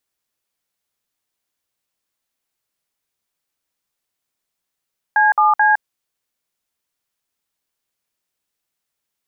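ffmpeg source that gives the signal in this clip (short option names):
-f lavfi -i "aevalsrc='0.224*clip(min(mod(t,0.217),0.161-mod(t,0.217))/0.002,0,1)*(eq(floor(t/0.217),0)*(sin(2*PI*852*mod(t,0.217))+sin(2*PI*1633*mod(t,0.217)))+eq(floor(t/0.217),1)*(sin(2*PI*852*mod(t,0.217))+sin(2*PI*1209*mod(t,0.217)))+eq(floor(t/0.217),2)*(sin(2*PI*852*mod(t,0.217))+sin(2*PI*1633*mod(t,0.217))))':d=0.651:s=44100"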